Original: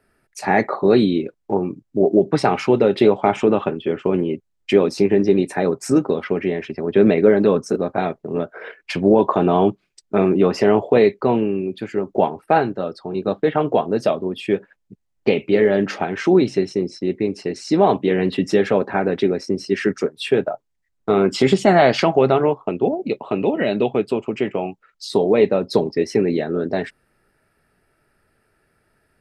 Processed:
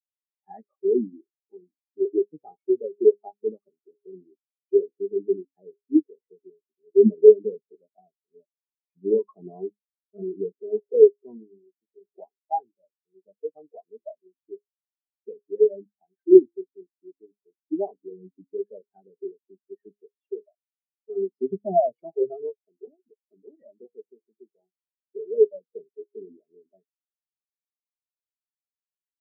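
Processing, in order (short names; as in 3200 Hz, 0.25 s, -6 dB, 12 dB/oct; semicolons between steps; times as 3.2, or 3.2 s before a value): de-hum 68.5 Hz, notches 7; spectral expander 4:1; gain +1 dB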